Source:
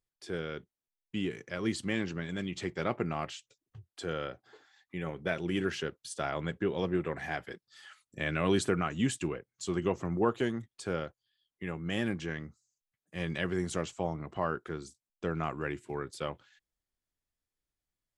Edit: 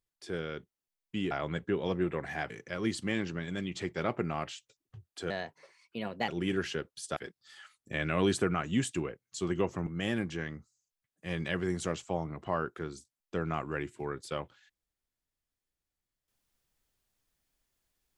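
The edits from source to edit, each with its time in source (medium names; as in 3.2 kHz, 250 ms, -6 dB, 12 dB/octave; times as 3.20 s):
4.11–5.36 s: speed 127%
6.24–7.43 s: move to 1.31 s
10.13–11.76 s: delete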